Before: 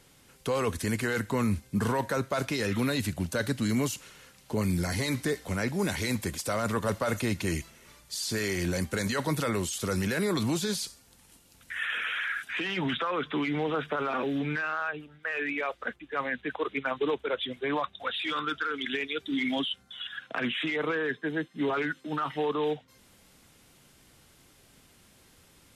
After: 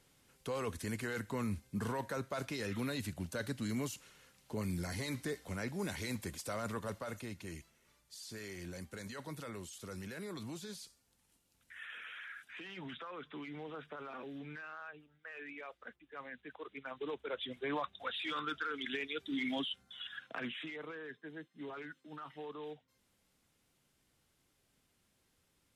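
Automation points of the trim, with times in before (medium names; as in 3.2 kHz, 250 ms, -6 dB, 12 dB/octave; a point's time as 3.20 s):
6.64 s -10 dB
7.34 s -16.5 dB
16.72 s -16.5 dB
17.54 s -7.5 dB
20.21 s -7.5 dB
20.88 s -17 dB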